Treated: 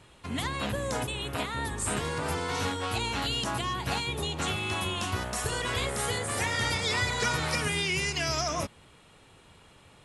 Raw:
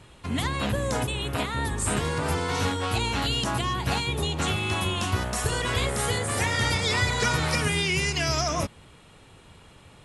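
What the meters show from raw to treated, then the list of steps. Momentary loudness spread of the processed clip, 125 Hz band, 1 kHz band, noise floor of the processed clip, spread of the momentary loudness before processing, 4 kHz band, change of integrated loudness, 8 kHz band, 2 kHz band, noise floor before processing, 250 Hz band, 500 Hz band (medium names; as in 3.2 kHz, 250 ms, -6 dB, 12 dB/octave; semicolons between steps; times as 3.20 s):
5 LU, -6.5 dB, -3.0 dB, -57 dBFS, 5 LU, -3.0 dB, -4.0 dB, -3.0 dB, -3.0 dB, -52 dBFS, -5.0 dB, -4.0 dB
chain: bass shelf 230 Hz -4.5 dB; trim -3 dB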